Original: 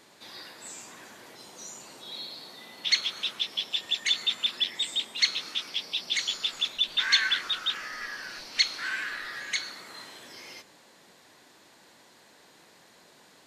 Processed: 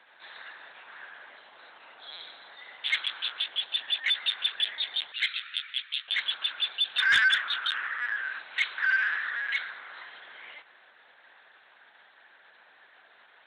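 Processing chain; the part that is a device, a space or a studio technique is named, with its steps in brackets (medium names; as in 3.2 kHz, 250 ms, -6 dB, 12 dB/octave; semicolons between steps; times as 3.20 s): 5.11–6.09 s: inverse Chebyshev high-pass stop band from 250 Hz, stop band 80 dB; talking toy (LPC vocoder at 8 kHz pitch kept; high-pass 600 Hz 12 dB/octave; peaking EQ 1.6 kHz +9.5 dB 0.49 oct; saturation -13.5 dBFS, distortion -21 dB)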